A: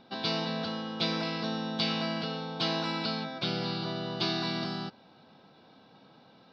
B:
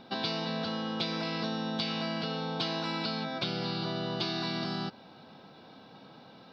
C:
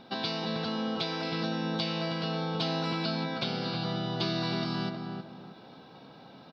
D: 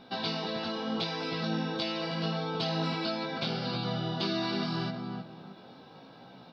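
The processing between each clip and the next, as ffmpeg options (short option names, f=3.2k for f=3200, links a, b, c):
-af "acompressor=threshold=-35dB:ratio=6,volume=5dB"
-filter_complex "[0:a]asplit=2[a][b];[b]adelay=316,lowpass=f=1.2k:p=1,volume=-3dB,asplit=2[c][d];[d]adelay=316,lowpass=f=1.2k:p=1,volume=0.32,asplit=2[e][f];[f]adelay=316,lowpass=f=1.2k:p=1,volume=0.32,asplit=2[g][h];[h]adelay=316,lowpass=f=1.2k:p=1,volume=0.32[i];[a][c][e][g][i]amix=inputs=5:normalize=0"
-af "flanger=delay=16:depth=5.4:speed=0.79,volume=2.5dB"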